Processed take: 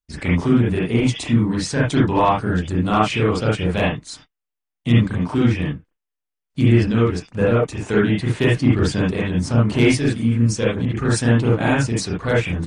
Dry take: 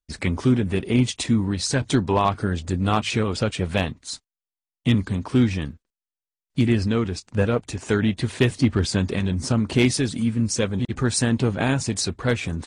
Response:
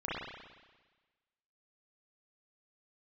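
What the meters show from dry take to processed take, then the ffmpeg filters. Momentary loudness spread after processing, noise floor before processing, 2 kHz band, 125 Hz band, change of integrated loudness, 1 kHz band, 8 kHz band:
6 LU, below −85 dBFS, +4.5 dB, +4.5 dB, +4.0 dB, +5.0 dB, −2.5 dB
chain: -filter_complex "[1:a]atrim=start_sample=2205,atrim=end_sample=3528,asetrate=41454,aresample=44100[link_01];[0:a][link_01]afir=irnorm=-1:irlink=0,volume=1dB"

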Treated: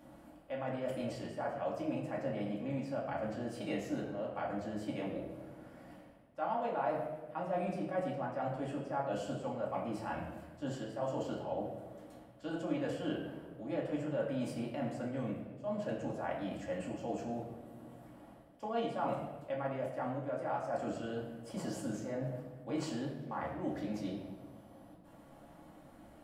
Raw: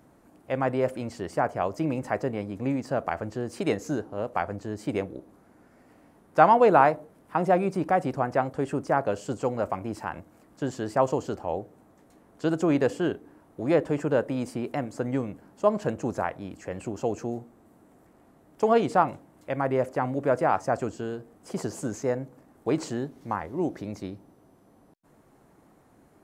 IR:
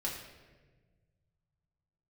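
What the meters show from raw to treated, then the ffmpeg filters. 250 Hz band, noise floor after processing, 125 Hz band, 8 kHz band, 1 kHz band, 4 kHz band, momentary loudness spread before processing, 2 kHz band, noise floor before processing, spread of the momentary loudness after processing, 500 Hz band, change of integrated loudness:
−9.0 dB, −57 dBFS, −9.0 dB, −10.0 dB, −13.5 dB, −6.0 dB, 12 LU, −12.0 dB, −59 dBFS, 17 LU, −11.5 dB, −11.5 dB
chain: -filter_complex "[0:a]equalizer=frequency=100:width_type=o:width=0.33:gain=-11,equalizer=frequency=400:width_type=o:width=0.33:gain=-8,equalizer=frequency=630:width_type=o:width=0.33:gain=6,equalizer=frequency=3150:width_type=o:width=0.33:gain=7,equalizer=frequency=6300:width_type=o:width=0.33:gain=-4,areverse,acompressor=threshold=-38dB:ratio=4,areverse[link_01];[1:a]atrim=start_sample=2205[link_02];[link_01][link_02]afir=irnorm=-1:irlink=0,volume=-1dB"

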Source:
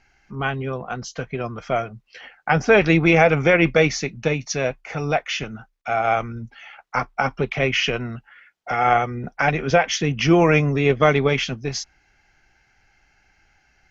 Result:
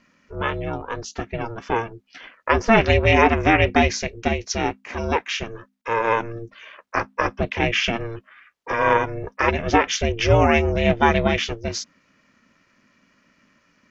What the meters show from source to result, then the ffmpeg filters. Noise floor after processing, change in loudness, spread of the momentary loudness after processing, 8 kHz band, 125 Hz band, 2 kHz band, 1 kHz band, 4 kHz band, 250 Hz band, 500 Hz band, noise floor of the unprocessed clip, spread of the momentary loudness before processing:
−63 dBFS, −0.5 dB, 15 LU, can't be measured, −1.5 dB, −0.5 dB, +1.0 dB, 0.0 dB, −1.5 dB, −1.5 dB, −63 dBFS, 15 LU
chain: -af "aeval=exprs='val(0)*sin(2*PI*230*n/s)':channel_layout=same,volume=2.5dB"

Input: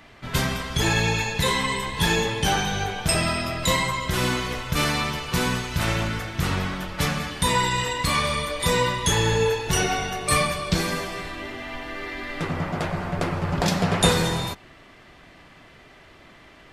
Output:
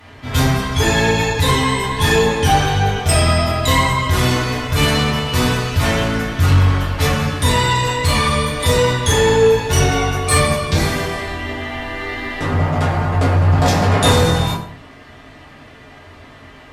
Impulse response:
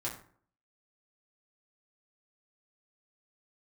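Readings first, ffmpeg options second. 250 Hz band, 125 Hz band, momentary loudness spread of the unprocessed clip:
+7.0 dB, +11.0 dB, 8 LU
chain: -filter_complex "[1:a]atrim=start_sample=2205,asetrate=34839,aresample=44100[link_01];[0:a][link_01]afir=irnorm=-1:irlink=0,acontrast=67,volume=-2dB"

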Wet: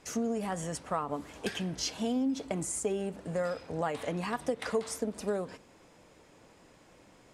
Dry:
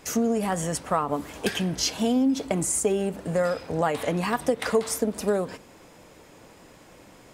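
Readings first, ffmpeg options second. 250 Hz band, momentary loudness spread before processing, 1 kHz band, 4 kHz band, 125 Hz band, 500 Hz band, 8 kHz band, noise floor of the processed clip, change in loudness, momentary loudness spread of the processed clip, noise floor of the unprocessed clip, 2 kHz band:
−8.0 dB, 5 LU, −8.0 dB, −8.0 dB, −8.0 dB, −8.0 dB, −9.0 dB, −59 dBFS, −8.0 dB, 5 LU, −51 dBFS, −8.0 dB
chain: -af "lowpass=9900,volume=-8dB"

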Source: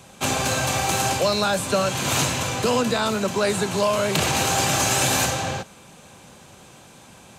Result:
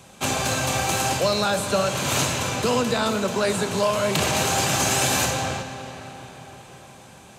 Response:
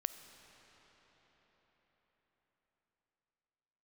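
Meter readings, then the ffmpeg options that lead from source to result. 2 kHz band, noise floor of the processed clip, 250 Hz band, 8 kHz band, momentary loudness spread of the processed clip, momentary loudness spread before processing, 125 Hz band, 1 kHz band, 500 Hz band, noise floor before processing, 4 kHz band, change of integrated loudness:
−0.5 dB, −47 dBFS, −0.5 dB, −1.0 dB, 14 LU, 4 LU, −0.5 dB, −1.0 dB, −0.5 dB, −48 dBFS, −0.5 dB, −1.0 dB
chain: -filter_complex "[1:a]atrim=start_sample=2205[link_01];[0:a][link_01]afir=irnorm=-1:irlink=0"

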